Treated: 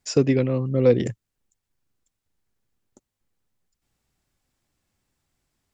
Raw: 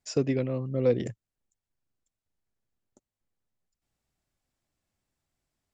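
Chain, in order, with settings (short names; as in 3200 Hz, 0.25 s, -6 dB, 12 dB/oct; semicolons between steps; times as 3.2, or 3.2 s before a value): bell 640 Hz -4.5 dB 0.34 oct; gain +7.5 dB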